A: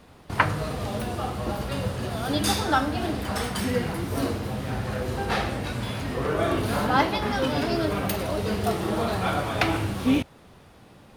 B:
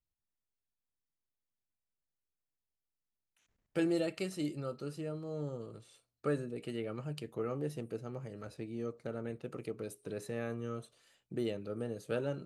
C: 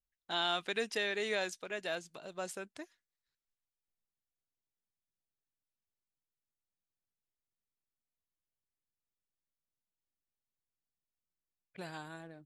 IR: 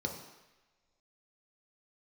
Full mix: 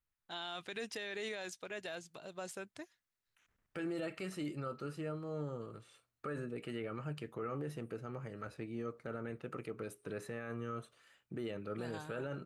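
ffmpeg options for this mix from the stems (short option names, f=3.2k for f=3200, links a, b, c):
-filter_complex "[1:a]firequalizer=gain_entry='entry(660,0);entry(1300,8);entry(4200,-3)':delay=0.05:min_phase=1,volume=-1dB[a];[2:a]dynaudnorm=f=110:g=7:m=9.5dB,equalizer=f=110:t=o:w=0.49:g=12,deesser=0.6,volume=-11.5dB[b];[a][b]amix=inputs=2:normalize=0,alimiter=level_in=8dB:limit=-24dB:level=0:latency=1:release=26,volume=-8dB"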